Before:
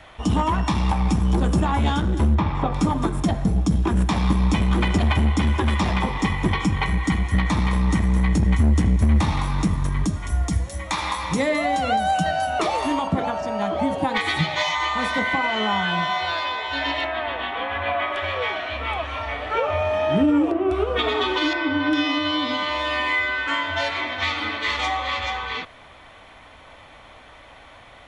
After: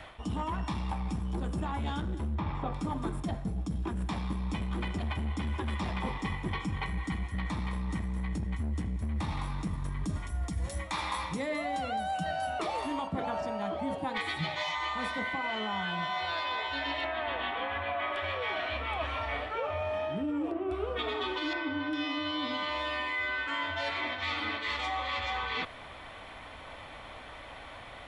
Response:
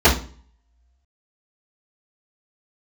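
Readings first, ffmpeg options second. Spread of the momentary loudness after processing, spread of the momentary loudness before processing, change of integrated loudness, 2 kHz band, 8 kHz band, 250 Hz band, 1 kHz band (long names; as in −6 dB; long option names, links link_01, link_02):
4 LU, 6 LU, −11.5 dB, −9.5 dB, −13.5 dB, −13.0 dB, −10.0 dB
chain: -af "areverse,acompressor=threshold=-30dB:ratio=12,areverse,equalizer=frequency=6300:width_type=o:width=0.3:gain=-5.5"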